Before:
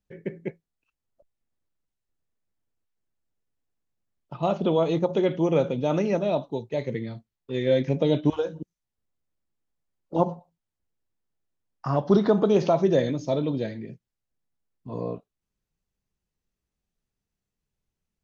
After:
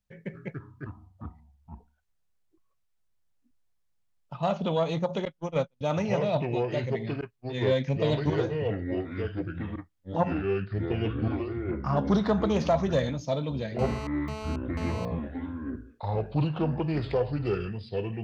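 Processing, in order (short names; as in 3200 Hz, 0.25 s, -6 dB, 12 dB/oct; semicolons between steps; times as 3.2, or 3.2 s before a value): self-modulated delay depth 0.069 ms; 5.25–5.81 gate -20 dBFS, range -50 dB; bell 350 Hz -12.5 dB 0.79 oct; echoes that change speed 0.2 s, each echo -5 st, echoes 3; 10.15–11.97 air absorption 70 m; 13.79–15.05 GSM buzz -38 dBFS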